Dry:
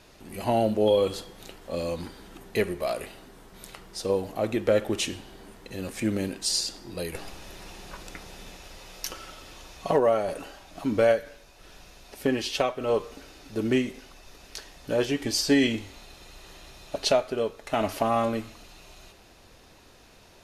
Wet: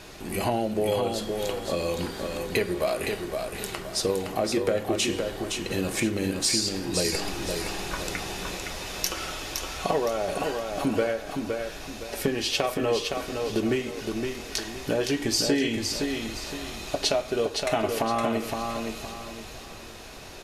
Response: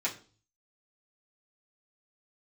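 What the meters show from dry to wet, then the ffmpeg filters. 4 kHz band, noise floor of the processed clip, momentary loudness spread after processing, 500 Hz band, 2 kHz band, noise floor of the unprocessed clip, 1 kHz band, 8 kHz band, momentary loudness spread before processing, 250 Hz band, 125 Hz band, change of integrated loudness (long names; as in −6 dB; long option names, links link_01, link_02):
+4.0 dB, −41 dBFS, 8 LU, −0.5 dB, +3.5 dB, −54 dBFS, +1.0 dB, +5.0 dB, 21 LU, +0.5 dB, +2.0 dB, −1.0 dB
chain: -filter_complex "[0:a]acompressor=threshold=-33dB:ratio=5,aecho=1:1:515|1030|1545|2060:0.562|0.186|0.0612|0.0202,asplit=2[link_01][link_02];[1:a]atrim=start_sample=2205[link_03];[link_02][link_03]afir=irnorm=-1:irlink=0,volume=-12dB[link_04];[link_01][link_04]amix=inputs=2:normalize=0,volume=8dB"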